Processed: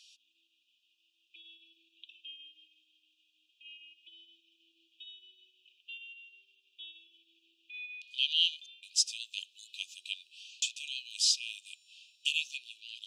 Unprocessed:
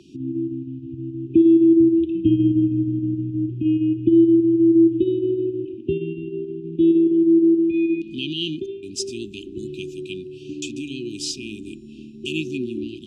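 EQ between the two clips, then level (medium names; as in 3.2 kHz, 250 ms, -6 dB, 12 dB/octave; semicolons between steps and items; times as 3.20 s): ladder high-pass 2.6 kHz, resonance 30%; +6.5 dB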